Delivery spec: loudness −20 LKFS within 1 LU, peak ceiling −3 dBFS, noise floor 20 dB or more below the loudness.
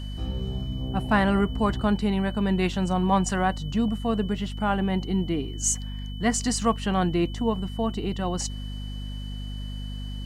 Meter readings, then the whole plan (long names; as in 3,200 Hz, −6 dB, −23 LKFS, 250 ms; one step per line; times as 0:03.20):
mains hum 50 Hz; hum harmonics up to 250 Hz; level of the hum −31 dBFS; interfering tone 3,000 Hz; level of the tone −44 dBFS; integrated loudness −26.5 LKFS; sample peak −8.0 dBFS; target loudness −20.0 LKFS
→ mains-hum notches 50/100/150/200/250 Hz
notch filter 3,000 Hz, Q 30
level +6.5 dB
brickwall limiter −3 dBFS